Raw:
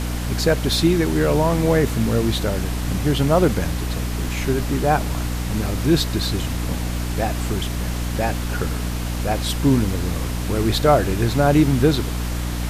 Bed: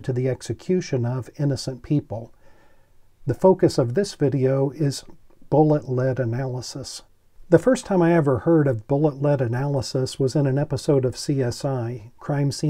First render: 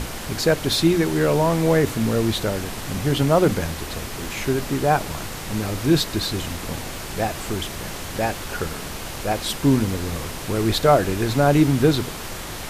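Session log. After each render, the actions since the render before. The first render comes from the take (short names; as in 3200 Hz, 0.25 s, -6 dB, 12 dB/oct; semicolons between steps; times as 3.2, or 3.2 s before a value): notches 60/120/180/240/300 Hz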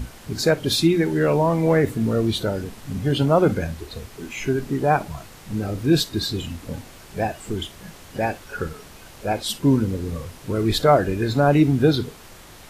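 noise print and reduce 12 dB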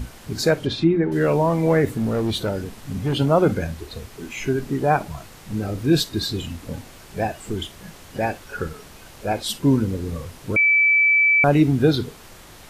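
0.58–1.12 treble ducked by the level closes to 1500 Hz, closed at -16 dBFS; 1.96–3.16 hard clip -17.5 dBFS; 10.56–11.44 bleep 2310 Hz -13 dBFS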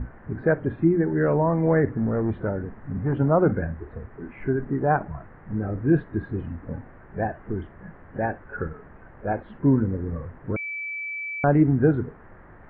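elliptic low-pass 1800 Hz, stop band 70 dB; bell 770 Hz -3 dB 2.4 oct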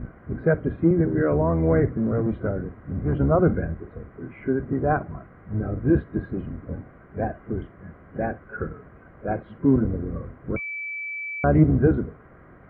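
octaver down 1 oct, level 0 dB; notch comb 890 Hz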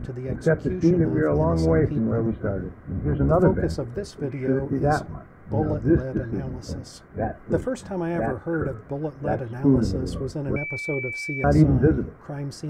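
add bed -9.5 dB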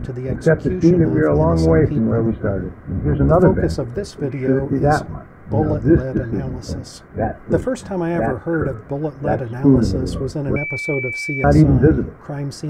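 gain +6 dB; limiter -2 dBFS, peak gain reduction 2.5 dB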